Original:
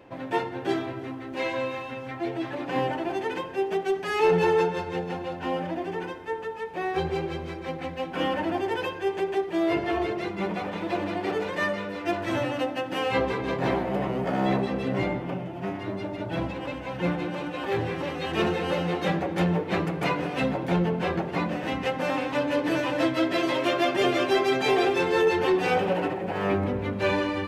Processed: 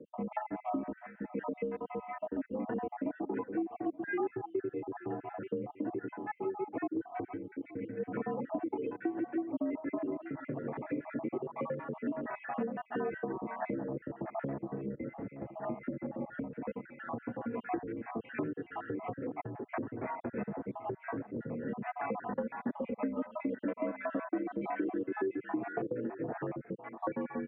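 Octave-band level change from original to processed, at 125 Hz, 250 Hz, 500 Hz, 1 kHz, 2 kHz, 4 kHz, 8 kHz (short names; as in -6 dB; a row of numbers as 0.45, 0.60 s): -14.0 dB, -8.0 dB, -12.0 dB, -11.5 dB, -15.0 dB, under -35 dB, n/a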